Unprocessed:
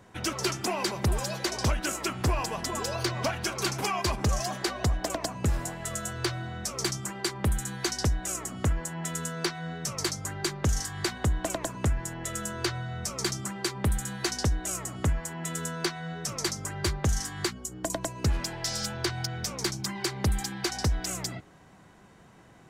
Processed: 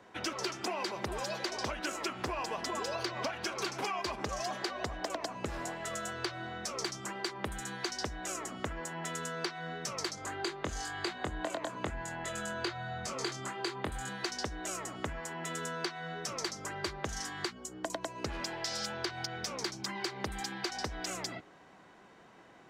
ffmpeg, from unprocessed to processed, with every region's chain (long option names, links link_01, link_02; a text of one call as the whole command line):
ffmpeg -i in.wav -filter_complex "[0:a]asettb=1/sr,asplit=3[link_01][link_02][link_03];[link_01]atrim=end=10.154[link_04];[link_02]atrim=start=10.15:end=14.09,asetpts=PTS-STARTPTS,afade=type=in:duration=0.004:curve=qsin,afade=type=out:start_time=3.936:duration=0.004:curve=qsin,highshelf=frequency=12000:gain=-10.5,bandreject=frequency=5600:width=7.3,asplit=2[link_05][link_06];[link_06]adelay=23,volume=-4dB[link_07];[link_05][link_07]amix=inputs=2:normalize=0,atrim=end_sample=173754[link_08];[link_03]atrim=start=14.086[link_09];[link_04][link_08]acrossfade=duration=0.004:curve1=hsin:curve2=qsin[link_10];[link_10][link_09]acrossfade=duration=0.004:curve1=qsin:curve2=hsin,acrossover=split=240 5800:gain=0.2 1 0.251[link_11][link_12][link_13];[link_11][link_12][link_13]amix=inputs=3:normalize=0,acompressor=threshold=-32dB:ratio=6" out.wav